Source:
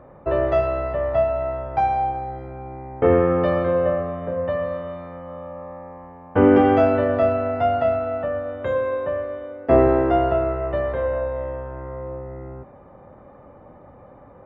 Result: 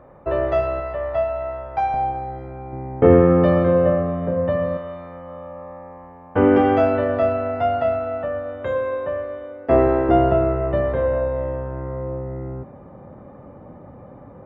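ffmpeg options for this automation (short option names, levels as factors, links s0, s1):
-af "asetnsamples=n=441:p=0,asendcmd='0.8 equalizer g -8.5;1.94 equalizer g 1.5;2.73 equalizer g 8.5;4.77 equalizer g -1.5;10.09 equalizer g 8.5',equalizer=f=170:t=o:w=2.5:g=-2"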